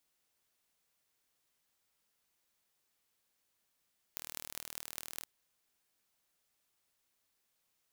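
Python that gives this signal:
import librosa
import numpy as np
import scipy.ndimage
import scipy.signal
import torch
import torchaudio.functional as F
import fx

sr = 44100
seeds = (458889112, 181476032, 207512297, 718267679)

y = fx.impulse_train(sr, length_s=1.09, per_s=39.4, accent_every=8, level_db=-11.0)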